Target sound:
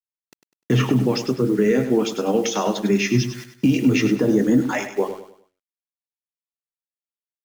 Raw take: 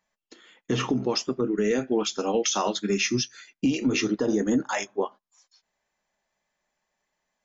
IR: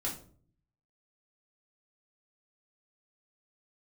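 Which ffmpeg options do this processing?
-filter_complex "[0:a]bandreject=f=92.46:t=h:w=4,bandreject=f=184.92:t=h:w=4,bandreject=f=277.38:t=h:w=4,bandreject=f=369.84:t=h:w=4,bandreject=f=462.3:t=h:w=4,bandreject=f=554.76:t=h:w=4,bandreject=f=647.22:t=h:w=4,bandreject=f=739.68:t=h:w=4,bandreject=f=832.14:t=h:w=4,agate=range=0.0224:threshold=0.00891:ratio=3:detection=peak,equalizer=f=125:t=o:w=1:g=11,equalizer=f=1000:t=o:w=1:g=-4,equalizer=f=2000:t=o:w=1:g=7,acrossover=split=160|1200[s0][s1][s2];[s1]acontrast=33[s3];[s0][s3][s2]amix=inputs=3:normalize=0,acrusher=bits=6:mix=0:aa=0.000001,asplit=2[s4][s5];[s5]aecho=0:1:100|200|300|400:0.316|0.111|0.0387|0.0136[s6];[s4][s6]amix=inputs=2:normalize=0,adynamicequalizer=threshold=0.02:dfrequency=1500:dqfactor=0.7:tfrequency=1500:tqfactor=0.7:attack=5:release=100:ratio=0.375:range=1.5:mode=cutabove:tftype=highshelf"

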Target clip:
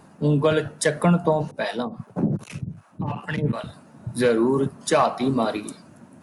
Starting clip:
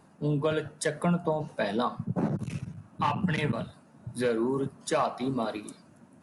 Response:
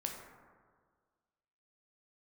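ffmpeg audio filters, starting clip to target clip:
-filter_complex "[0:a]asettb=1/sr,asplit=3[s0][s1][s2];[s0]atrim=end=1.514[s3];[s1]atrim=start=1.51:end=3.64,asetpts=PTS-STARTPTS,afade=t=in:d=0.004:c=qsin,afade=t=out:st=2.126:d=0.004:c=qsin,acrossover=split=540[s4][s5];[s4]aeval=exprs='val(0)*(1-1/2+1/2*cos(2*PI*2.6*n/s))':c=same[s6];[s5]aeval=exprs='val(0)*(1-1/2-1/2*cos(2*PI*2.6*n/s))':c=same[s7];[s6][s7]amix=inputs=2:normalize=0[s8];[s2]atrim=start=3.636[s9];[s3][s8]acrossfade=d=0.004:c1=hsin:c2=qsin[s10];[s10][s9]acrossfade=d=0.004:c1=qsin:c2=hsin,volume=2.51"

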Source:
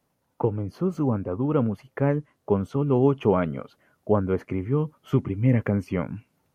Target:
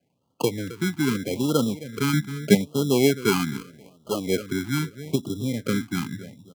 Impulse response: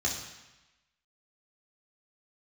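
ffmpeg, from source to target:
-filter_complex "[0:a]asplit=2[s0][s1];[s1]adelay=265,lowpass=f=2000:p=1,volume=0.15,asplit=2[s2][s3];[s3]adelay=265,lowpass=f=2000:p=1,volume=0.34,asplit=2[s4][s5];[s5]adelay=265,lowpass=f=2000:p=1,volume=0.34[s6];[s0][s2][s4][s6]amix=inputs=4:normalize=0,asettb=1/sr,asplit=3[s7][s8][s9];[s7]atrim=end=3.574[s10];[s8]atrim=start=3.57:end=4.27,asetpts=PTS-STARTPTS,afade=t=in:d=0.004:c=qsin,afade=t=out:st=0.696:d=0.004:c=qsin,aeval=exprs='max(val(0),0)':c=same[s11];[s9]atrim=start=4.266[s12];[s10][s11]acrossfade=d=0.004:c1=hsin:c2=qsin[s13];[s13][s12]acrossfade=d=0.004:c1=qsin:c2=hsin,asettb=1/sr,asplit=3[s14][s15][s16];[s14]atrim=end=5.154[s17];[s15]atrim=start=5.15:end=5.66,asetpts=PTS-STARTPTS,afade=t=in:d=0.004:c=qsin,afade=t=out:st=0.506:d=0.004:c=qsin,acompressor=threshold=0.0891:ratio=6[s18];[s16]atrim=start=5.656[s19];[s17][s18]acrossfade=d=0.004:c1=hsin:c2=qsin[s20];[s20][s19]acrossfade=d=0.004:c1=qsin:c2=hsin,tiltshelf=f=1300:g=8,acrossover=split=170[s21][s22];[s21]acompressor=threshold=0.0316:ratio=6[s23];[s23][s22]amix=inputs=2:normalize=0,asettb=1/sr,asplit=3[s24][s25][s26];[s24]atrim=end=2.134[s27];[s25]atrim=start=2.13:end=2.55,asetpts=PTS-STARTPTS,afade=t=in:d=0.004:c=qsin,afade=t=out:st=0.416:d=0.004:c=qsin,equalizer=f=190:t=o:w=0.82:g=13[s28];[s26]atrim=start=2.546[s29];[s27][s28]acrossfade=d=0.004:c1=hsin:c2=qsin[s30];[s30][s29]acrossfade=d=0.004:c1=qsin:c2=hsin,acrusher=samples=24:mix=1:aa=0.000001,highpass=100,afftfilt=real='re*(1-between(b*sr/1024,510*pow(2000/510,0.5+0.5*sin(2*PI*0.8*pts/sr))/1.41,510*pow(2000/510,0.5+0.5*sin(2*PI*0.8*pts/sr))*1.41))':imag='im*(1-between(b*sr/1024,510*pow(2000/510,0.5+0.5*sin(2*PI*0.8*pts/sr))/1.41,510*pow(2000/510,0.5+0.5*sin(2*PI*0.8*pts/sr))*1.41))':win_size=1024:overlap=0.75,volume=0.596"

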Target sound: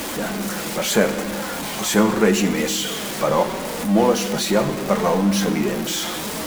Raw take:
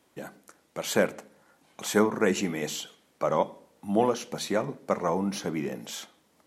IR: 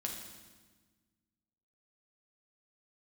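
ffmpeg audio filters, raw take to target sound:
-filter_complex "[0:a]aeval=exprs='val(0)+0.5*0.0447*sgn(val(0))':c=same,asplit=2[s0][s1];[1:a]atrim=start_sample=2205[s2];[s1][s2]afir=irnorm=-1:irlink=0,volume=0.596[s3];[s0][s3]amix=inputs=2:normalize=0,flanger=delay=3.4:depth=2.6:regen=-46:speed=0.75:shape=triangular,volume=1.88"

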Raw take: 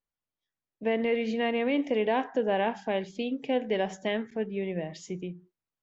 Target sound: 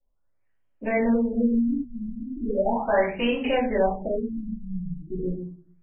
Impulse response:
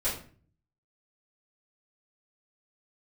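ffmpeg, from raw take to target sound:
-filter_complex "[0:a]asubboost=boost=5.5:cutoff=62,acrossover=split=260|730[s0][s1][s2];[s1]acompressor=threshold=0.00794:ratio=6[s3];[s0][s3][s2]amix=inputs=3:normalize=0,asettb=1/sr,asplit=3[s4][s5][s6];[s4]atrim=end=2.714[s7];[s5]atrim=start=2.71:end=3.46,asetpts=PTS-STARTPTS,afade=t=in:d=0.004:c=qsin,afade=t=out:st=0.746:d=0.004:c=qsin,asplit=2[s8][s9];[s9]highpass=f=720:p=1,volume=6.31,asoftclip=type=tanh:threshold=0.075[s10];[s8][s10]amix=inputs=2:normalize=0,lowpass=f=6400:p=1,volume=0.501[s11];[s6]atrim=start=3.456[s12];[s7][s11]acrossfade=d=0.004:c1=hsin:c2=qsin[s13];[s13][s12]acrossfade=d=0.004:c1=qsin:c2=hsin,asplit=2[s14][s15];[s15]asoftclip=type=tanh:threshold=0.0237,volume=0.447[s16];[s14][s16]amix=inputs=2:normalize=0[s17];[1:a]atrim=start_sample=2205[s18];[s17][s18]afir=irnorm=-1:irlink=0,afftfilt=real='re*lt(b*sr/1024,230*pow(3300/230,0.5+0.5*sin(2*PI*0.37*pts/sr)))':imag='im*lt(b*sr/1024,230*pow(3300/230,0.5+0.5*sin(2*PI*0.37*pts/sr)))':win_size=1024:overlap=0.75"

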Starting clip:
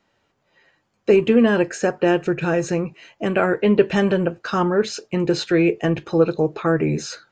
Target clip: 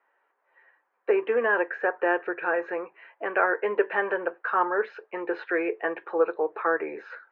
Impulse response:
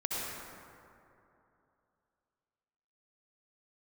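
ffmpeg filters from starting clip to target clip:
-af "highpass=f=460:w=0.5412,highpass=f=460:w=1.3066,equalizer=f=610:t=q:w=4:g=-5,equalizer=f=980:t=q:w=4:g=4,equalizer=f=1700:t=q:w=4:g=5,lowpass=f=2000:w=0.5412,lowpass=f=2000:w=1.3066,volume=0.794"

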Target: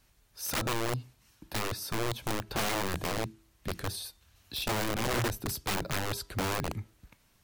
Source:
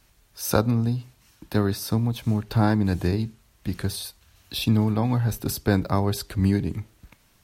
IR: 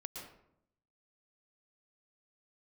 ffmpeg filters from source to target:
-af "bandreject=f=327.4:t=h:w=4,bandreject=f=654.8:t=h:w=4,bandreject=f=982.2:t=h:w=4,bandreject=f=1309.6:t=h:w=4,bandreject=f=1637:t=h:w=4,bandreject=f=1964.4:t=h:w=4,bandreject=f=2291.8:t=h:w=4,bandreject=f=2619.2:t=h:w=4,bandreject=f=2946.6:t=h:w=4,bandreject=f=3274:t=h:w=4,bandreject=f=3601.4:t=h:w=4,aeval=exprs='(mod(8.91*val(0)+1,2)-1)/8.91':c=same,volume=0.501"

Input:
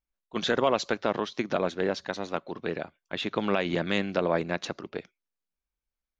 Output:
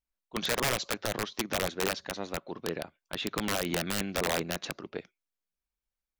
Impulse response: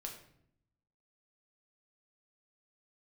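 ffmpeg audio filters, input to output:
-af "aeval=exprs='(mod(7.94*val(0)+1,2)-1)/7.94':c=same,volume=0.75"

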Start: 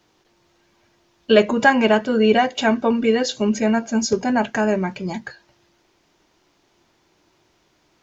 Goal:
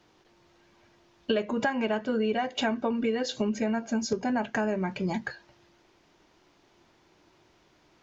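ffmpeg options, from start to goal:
-af "highshelf=f=6600:g=-9.5,acompressor=threshold=0.0562:ratio=6"

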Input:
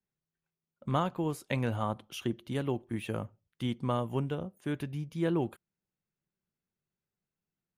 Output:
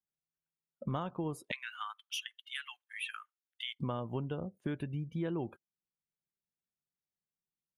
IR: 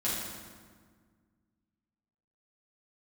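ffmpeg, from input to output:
-filter_complex "[0:a]asplit=3[s0][s1][s2];[s0]afade=t=out:st=1.5:d=0.02[s3];[s1]highpass=f=1500:w=0.5412,highpass=f=1500:w=1.3066,afade=t=in:st=1.5:d=0.02,afade=t=out:st=3.79:d=0.02[s4];[s2]afade=t=in:st=3.79:d=0.02[s5];[s3][s4][s5]amix=inputs=3:normalize=0,afftdn=nr=22:nf=-49,acompressor=threshold=0.00501:ratio=4,volume=2.99"

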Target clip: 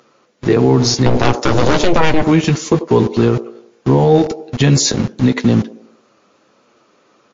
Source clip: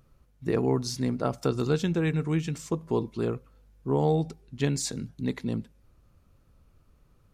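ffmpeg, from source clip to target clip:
-filter_complex "[0:a]asettb=1/sr,asplit=3[s0][s1][s2];[s0]atrim=end=1.064[s3];[s1]atrim=start=1.06:end=2.22,asetpts=PTS-STARTPTS,afade=t=in:d=0.004:c=qsin,afade=t=out:st=1.156:d=0.004:c=qsin,aeval=exprs='0.251*(cos(1*acos(clip(val(0)/0.251,-1,1)))-cos(1*PI/2))+0.0708*(cos(7*acos(clip(val(0)/0.251,-1,1)))-cos(7*PI/2))+0.0562*(cos(8*acos(clip(val(0)/0.251,-1,1)))-cos(8*PI/2))':c=same[s4];[s2]atrim=start=2.216[s5];[s3][s4]acrossfade=d=0.004:c1=hsin:c2=qsin[s6];[s6][s5]acrossfade=d=0.004:c1=qsin:c2=hsin,flanger=delay=8.3:depth=1.7:regen=-31:speed=1.5:shape=sinusoidal,acrossover=split=260|1000[s7][s8][s9];[s7]aeval=exprs='val(0)*gte(abs(val(0)),0.00708)':c=same[s10];[s8]aecho=1:1:91|182|273|364|455:0.224|0.103|0.0474|0.0218|0.01[s11];[s10][s11][s9]amix=inputs=3:normalize=0,alimiter=level_in=15.8:limit=0.891:release=50:level=0:latency=1,volume=0.891" -ar 16000 -c:a libmp3lame -b:a 40k

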